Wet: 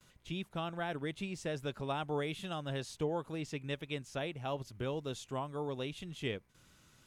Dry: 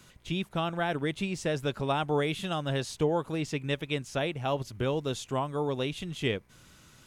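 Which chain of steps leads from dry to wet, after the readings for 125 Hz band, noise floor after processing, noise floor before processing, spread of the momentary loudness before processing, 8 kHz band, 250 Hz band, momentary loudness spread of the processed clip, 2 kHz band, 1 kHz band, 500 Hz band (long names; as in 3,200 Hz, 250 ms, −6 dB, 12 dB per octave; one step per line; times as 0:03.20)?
−8.0 dB, −66 dBFS, −57 dBFS, 4 LU, −8.0 dB, −8.0 dB, 4 LU, −8.0 dB, −8.0 dB, −8.0 dB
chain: noise gate with hold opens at −47 dBFS
level −8 dB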